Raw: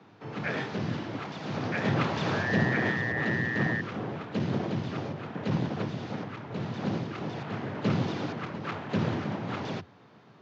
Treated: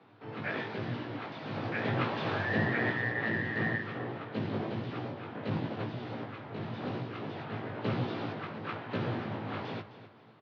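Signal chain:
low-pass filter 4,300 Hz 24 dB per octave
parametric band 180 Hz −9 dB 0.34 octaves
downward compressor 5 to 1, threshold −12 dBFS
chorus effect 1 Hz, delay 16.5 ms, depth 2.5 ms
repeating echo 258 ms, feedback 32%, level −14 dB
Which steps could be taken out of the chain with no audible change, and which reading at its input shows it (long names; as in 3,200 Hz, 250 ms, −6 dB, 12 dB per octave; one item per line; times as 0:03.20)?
downward compressor, threshold −12 dBFS: peak of its input −15.0 dBFS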